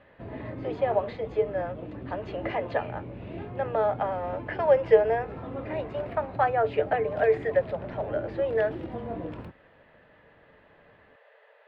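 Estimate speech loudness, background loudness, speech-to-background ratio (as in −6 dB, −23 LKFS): −27.5 LKFS, −39.0 LKFS, 11.5 dB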